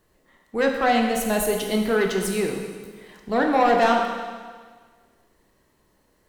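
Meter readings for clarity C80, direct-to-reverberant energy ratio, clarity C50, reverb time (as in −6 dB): 5.0 dB, 1.5 dB, 4.0 dB, 1.6 s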